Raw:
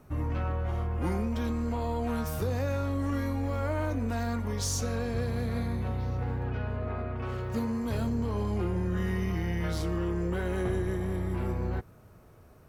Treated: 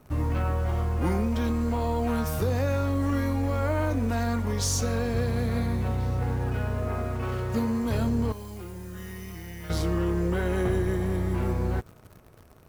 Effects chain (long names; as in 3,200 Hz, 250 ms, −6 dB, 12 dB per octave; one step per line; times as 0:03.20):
in parallel at −4 dB: bit-depth reduction 8 bits, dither none
0:08.32–0:09.70: on the sum: first-order pre-emphasis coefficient 0.8